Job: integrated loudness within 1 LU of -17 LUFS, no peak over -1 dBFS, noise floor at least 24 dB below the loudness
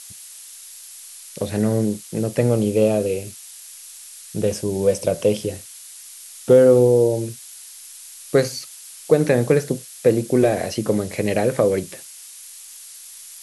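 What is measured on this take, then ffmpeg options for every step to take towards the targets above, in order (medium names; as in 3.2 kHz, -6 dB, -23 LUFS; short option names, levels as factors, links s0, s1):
noise floor -41 dBFS; noise floor target -44 dBFS; loudness -19.5 LUFS; peak level -2.5 dBFS; loudness target -17.0 LUFS
-> -af "afftdn=nr=6:nf=-41"
-af "volume=1.33,alimiter=limit=0.891:level=0:latency=1"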